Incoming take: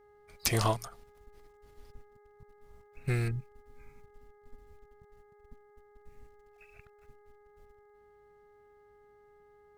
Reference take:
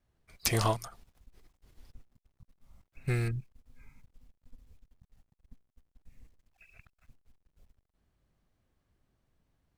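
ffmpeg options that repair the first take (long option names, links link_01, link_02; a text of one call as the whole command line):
ffmpeg -i in.wav -af "bandreject=frequency=414.1:width_type=h:width=4,bandreject=frequency=828.2:width_type=h:width=4,bandreject=frequency=1242.3:width_type=h:width=4,bandreject=frequency=1656.4:width_type=h:width=4,bandreject=frequency=2070.5:width_type=h:width=4" out.wav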